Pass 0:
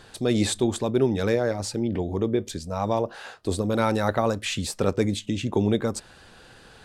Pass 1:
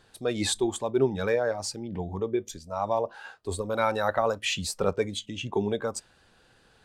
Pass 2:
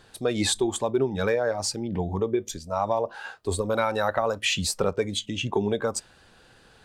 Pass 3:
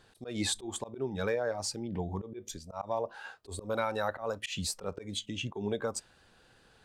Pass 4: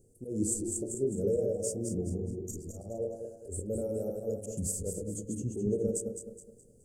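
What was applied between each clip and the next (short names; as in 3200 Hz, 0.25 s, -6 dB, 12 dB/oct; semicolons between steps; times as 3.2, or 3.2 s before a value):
spectral noise reduction 10 dB; dynamic EQ 3000 Hz, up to +3 dB, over -46 dBFS, Q 0.89; gain -1 dB
compressor 4:1, threshold -26 dBFS, peak gain reduction 8 dB; gain +5.5 dB
auto swell 0.121 s; gain -7 dB
regenerating reverse delay 0.105 s, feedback 61%, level -4 dB; elliptic band-stop 470–7400 Hz, stop band 40 dB; de-hum 47.38 Hz, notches 36; gain +3.5 dB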